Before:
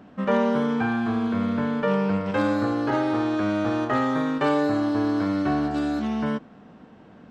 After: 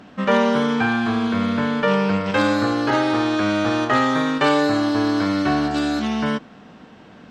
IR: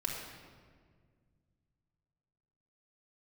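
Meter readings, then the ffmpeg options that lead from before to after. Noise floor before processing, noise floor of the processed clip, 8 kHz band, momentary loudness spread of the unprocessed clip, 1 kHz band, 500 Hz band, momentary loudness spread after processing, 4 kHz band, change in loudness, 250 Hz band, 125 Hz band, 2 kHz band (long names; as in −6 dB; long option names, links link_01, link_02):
−49 dBFS, −45 dBFS, can't be measured, 3 LU, +5.5 dB, +4.0 dB, 4 LU, +11.5 dB, +4.5 dB, +3.5 dB, +3.0 dB, +8.0 dB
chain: -af "equalizer=frequency=4900:width=0.34:gain=9.5,volume=3dB"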